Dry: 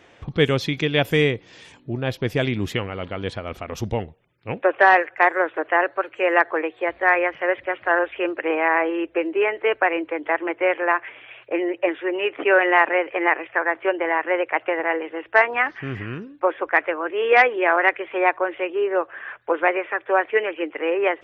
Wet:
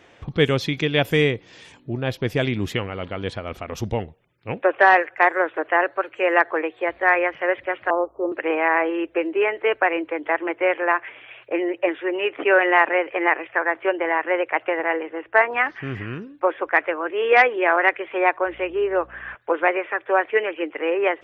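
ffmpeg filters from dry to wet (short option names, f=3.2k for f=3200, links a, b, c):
-filter_complex "[0:a]asettb=1/sr,asplit=3[a][b][c];[a]atrim=end=7.904[d];[b]atrim=start=7.9:end=8.32,asetpts=PTS-STARTPTS,afade=t=in:d=0.004:c=qsin,afade=t=out:st=0.416:d=0.004:c=qsin,asuperstop=centerf=2700:order=20:qfactor=0.59[e];[c]atrim=start=8.316[f];[d][e]acrossfade=d=0.004:c1=hsin:c2=qsin[g];[g][f]acrossfade=d=0.004:c1=qsin:c2=hsin,asettb=1/sr,asplit=3[h][i][j];[h]atrim=end=15.034[k];[i]atrim=start=15.03:end=15.51,asetpts=PTS-STARTPTS,afade=t=in:d=0.004:c=qsin,afade=t=out:st=0.476:d=0.004:c=qsin,lowpass=2.4k[l];[j]atrim=start=15.506[m];[k][l]acrossfade=d=0.004:c1=hsin:c2=qsin[n];[n][m]acrossfade=d=0.004:c1=qsin:c2=hsin,asettb=1/sr,asplit=3[o][p][q];[o]atrim=end=18.464[r];[p]atrim=start=18.46:end=19.35,asetpts=PTS-STARTPTS,afade=t=in:d=0.004:c=qsin,afade=t=out:st=0.886:d=0.004:c=qsin,aeval=exprs='val(0)+0.00355*(sin(2*PI*60*n/s)+sin(2*PI*2*60*n/s)/2+sin(2*PI*3*60*n/s)/3+sin(2*PI*4*60*n/s)/4+sin(2*PI*5*60*n/s)/5)':c=same[s];[q]atrim=start=19.346[t];[r][s]acrossfade=d=0.004:c1=hsin:c2=qsin[u];[u][t]acrossfade=d=0.004:c1=qsin:c2=hsin"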